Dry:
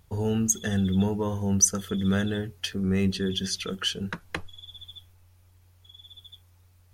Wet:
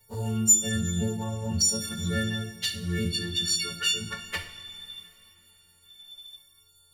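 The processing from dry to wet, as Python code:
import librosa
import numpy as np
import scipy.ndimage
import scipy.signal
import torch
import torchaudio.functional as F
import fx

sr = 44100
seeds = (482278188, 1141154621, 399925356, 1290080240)

p1 = fx.freq_snap(x, sr, grid_st=4)
p2 = fx.high_shelf(p1, sr, hz=9800.0, db=-10.5, at=(1.23, 1.69))
p3 = 10.0 ** (-18.0 / 20.0) * np.tanh(p2 / 10.0 ** (-18.0 / 20.0))
p4 = p2 + (p3 * 10.0 ** (-10.0 / 20.0))
p5 = fx.env_flanger(p4, sr, rest_ms=7.0, full_db=-16.0)
p6 = fx.rev_double_slope(p5, sr, seeds[0], early_s=0.54, late_s=3.5, knee_db=-17, drr_db=3.5)
y = p6 * 10.0 ** (-5.0 / 20.0)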